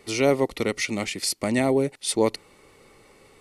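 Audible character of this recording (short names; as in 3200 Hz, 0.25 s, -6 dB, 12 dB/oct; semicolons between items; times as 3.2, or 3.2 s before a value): noise floor -56 dBFS; spectral tilt -4.0 dB/oct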